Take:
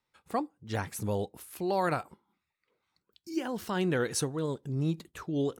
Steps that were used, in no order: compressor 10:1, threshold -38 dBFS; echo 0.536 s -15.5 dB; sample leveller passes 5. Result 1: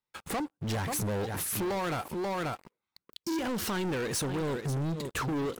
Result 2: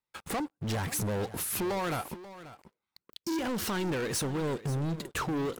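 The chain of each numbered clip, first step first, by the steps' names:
echo > compressor > sample leveller; compressor > sample leveller > echo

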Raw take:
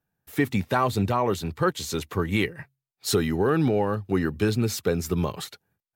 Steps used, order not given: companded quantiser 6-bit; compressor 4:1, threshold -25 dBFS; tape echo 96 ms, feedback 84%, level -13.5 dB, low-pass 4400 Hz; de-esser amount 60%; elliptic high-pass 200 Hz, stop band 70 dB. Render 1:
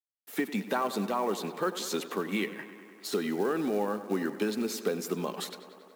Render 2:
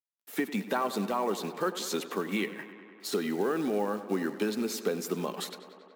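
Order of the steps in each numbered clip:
compressor > de-esser > elliptic high-pass > tape echo > companded quantiser; compressor > companded quantiser > elliptic high-pass > de-esser > tape echo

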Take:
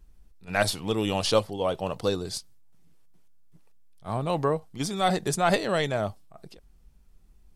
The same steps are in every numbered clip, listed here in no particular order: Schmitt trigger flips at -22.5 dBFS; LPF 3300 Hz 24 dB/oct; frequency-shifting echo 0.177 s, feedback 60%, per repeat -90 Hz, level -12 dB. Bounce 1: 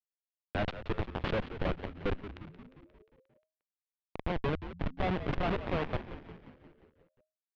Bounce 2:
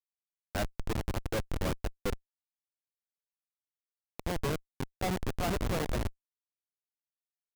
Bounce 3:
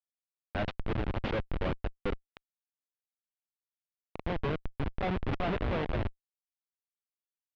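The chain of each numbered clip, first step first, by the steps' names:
Schmitt trigger > LPF > frequency-shifting echo; LPF > frequency-shifting echo > Schmitt trigger; frequency-shifting echo > Schmitt trigger > LPF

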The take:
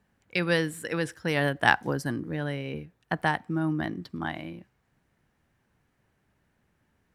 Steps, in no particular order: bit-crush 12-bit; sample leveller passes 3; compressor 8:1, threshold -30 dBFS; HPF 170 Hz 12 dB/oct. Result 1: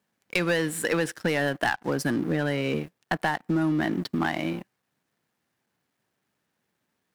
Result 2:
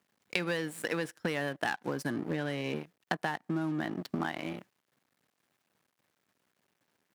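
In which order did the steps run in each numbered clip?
bit-crush > compressor > HPF > sample leveller; sample leveller > bit-crush > HPF > compressor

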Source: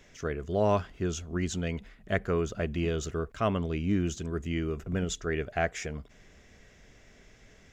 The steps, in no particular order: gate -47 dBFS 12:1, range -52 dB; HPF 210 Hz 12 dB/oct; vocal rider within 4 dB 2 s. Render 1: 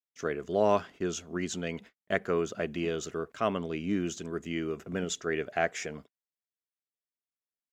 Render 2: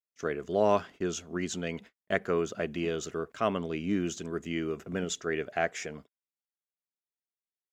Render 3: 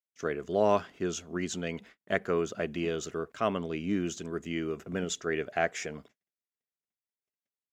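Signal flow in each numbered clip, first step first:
vocal rider > HPF > gate; HPF > gate > vocal rider; gate > vocal rider > HPF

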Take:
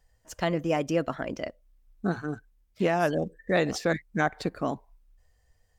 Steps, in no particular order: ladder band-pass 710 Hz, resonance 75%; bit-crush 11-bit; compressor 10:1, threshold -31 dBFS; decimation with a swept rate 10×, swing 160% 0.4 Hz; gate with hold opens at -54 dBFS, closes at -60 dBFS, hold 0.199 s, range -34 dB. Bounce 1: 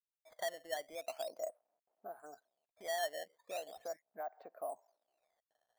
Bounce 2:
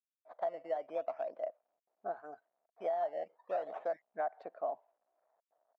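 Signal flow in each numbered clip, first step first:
gate with hold > bit-crush > compressor > ladder band-pass > decimation with a swept rate; decimation with a swept rate > gate with hold > bit-crush > ladder band-pass > compressor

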